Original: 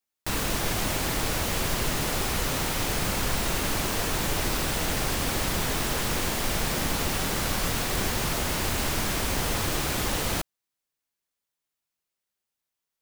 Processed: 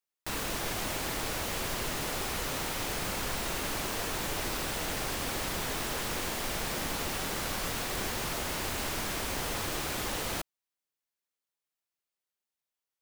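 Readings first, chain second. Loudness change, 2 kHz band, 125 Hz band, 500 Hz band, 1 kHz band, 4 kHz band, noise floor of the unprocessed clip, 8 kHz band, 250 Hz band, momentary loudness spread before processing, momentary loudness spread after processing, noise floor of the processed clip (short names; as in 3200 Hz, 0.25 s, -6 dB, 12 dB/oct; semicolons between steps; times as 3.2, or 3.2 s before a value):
-6.0 dB, -5.0 dB, -9.5 dB, -5.5 dB, -5.0 dB, -5.5 dB, under -85 dBFS, -6.0 dB, -7.5 dB, 0 LU, 0 LU, under -85 dBFS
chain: tone controls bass -5 dB, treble -1 dB; gain -5 dB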